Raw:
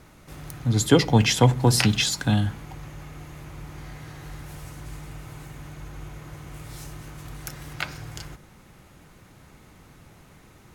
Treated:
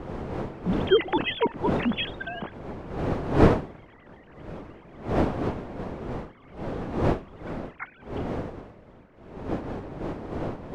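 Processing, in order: sine-wave speech; wind noise 470 Hz -23 dBFS; gain -7 dB

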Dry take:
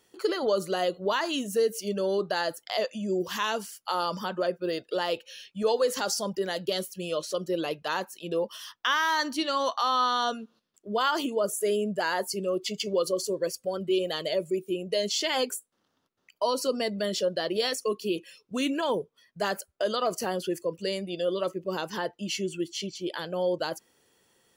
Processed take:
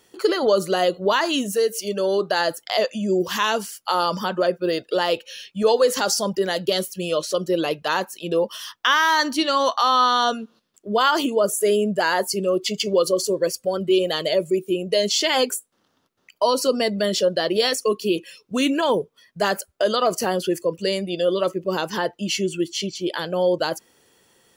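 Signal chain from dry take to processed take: 1.51–2.38 HPF 560 Hz -> 200 Hz 6 dB/oct; gain +7.5 dB

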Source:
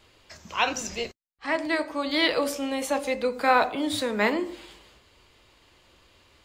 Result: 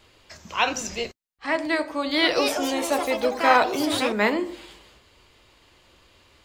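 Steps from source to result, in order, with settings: 1.88–4.34 echoes that change speed 0.29 s, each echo +4 st, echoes 3, each echo -6 dB; gain +2 dB

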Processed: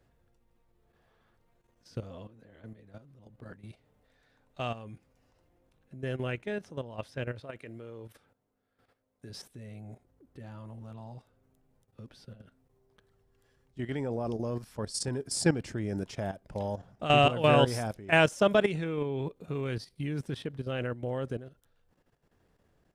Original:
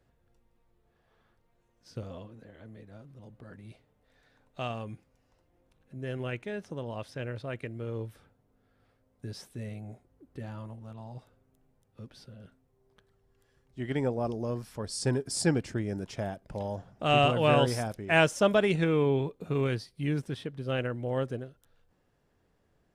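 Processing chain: 7.4–9.3 low shelf 160 Hz -11 dB; level quantiser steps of 12 dB; gain +3.5 dB

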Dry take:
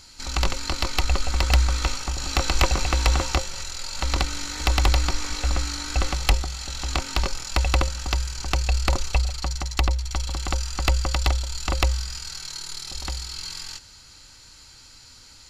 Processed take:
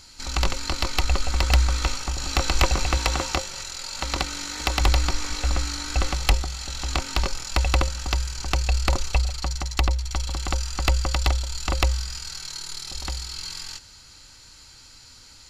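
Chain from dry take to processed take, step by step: 2.97–4.81 low shelf 80 Hz -10.5 dB

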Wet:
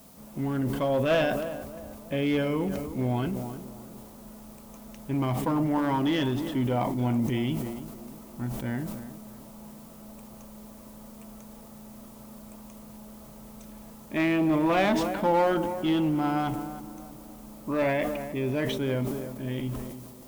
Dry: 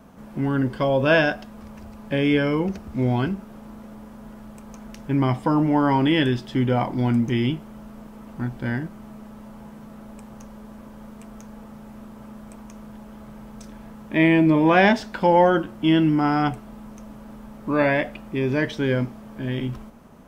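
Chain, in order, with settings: thirty-one-band EQ 630 Hz +3 dB, 1600 Hz -6 dB, 5000 Hz -9 dB; added noise blue -49 dBFS; one-sided clip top -16 dBFS; on a send: tape echo 0.314 s, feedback 54%, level -11 dB, low-pass 1100 Hz; on the sum: sustainer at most 36 dB/s; gain -6 dB

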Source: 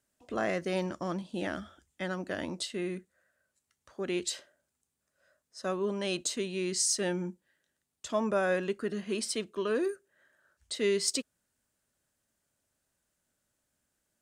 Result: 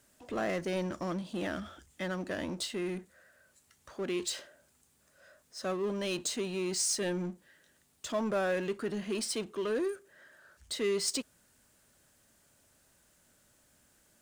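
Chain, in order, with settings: power-law curve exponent 0.7; gain -6 dB

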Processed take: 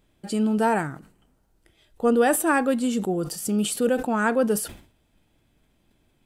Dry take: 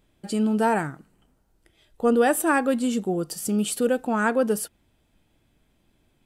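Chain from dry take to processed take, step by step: sustainer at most 120 dB/s

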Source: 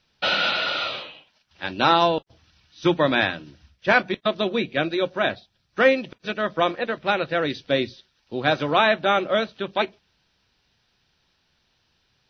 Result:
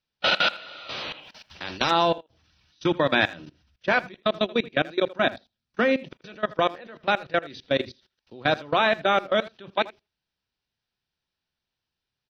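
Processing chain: 5.18–6.03 bell 240 Hz +12.5 dB 0.21 oct; level quantiser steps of 22 dB; speakerphone echo 80 ms, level -18 dB; 0.89–1.91 spectral compressor 2:1; gain +2 dB

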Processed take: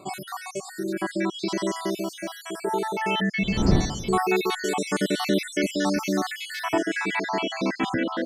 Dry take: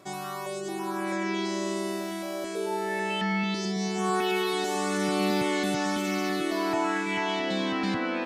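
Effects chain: random spectral dropouts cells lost 58%; 3.38–4.16 wind noise 220 Hz -35 dBFS; gain +6 dB

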